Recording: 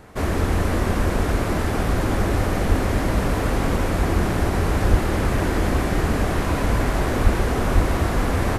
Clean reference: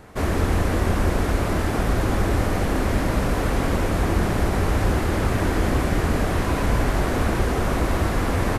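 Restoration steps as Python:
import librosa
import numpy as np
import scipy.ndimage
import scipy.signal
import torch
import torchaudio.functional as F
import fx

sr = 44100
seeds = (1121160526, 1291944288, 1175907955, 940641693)

y = fx.fix_deplosive(x, sr, at_s=(2.68, 4.9, 7.23, 7.74))
y = fx.fix_echo_inverse(y, sr, delay_ms=433, level_db=-9.5)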